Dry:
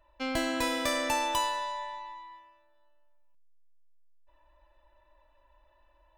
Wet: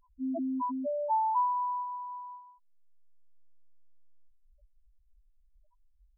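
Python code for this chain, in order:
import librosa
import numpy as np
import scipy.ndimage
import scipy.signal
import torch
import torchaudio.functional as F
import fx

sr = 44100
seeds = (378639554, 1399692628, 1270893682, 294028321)

y = fx.spec_topn(x, sr, count=1)
y = y * 10.0 ** (8.0 / 20.0)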